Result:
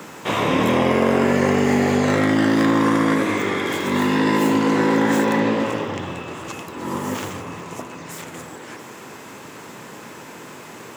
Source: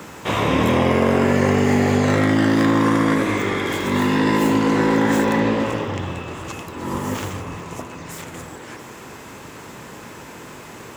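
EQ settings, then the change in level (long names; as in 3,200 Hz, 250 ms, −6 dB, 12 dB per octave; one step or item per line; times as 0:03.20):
high-pass filter 140 Hz 12 dB per octave
0.0 dB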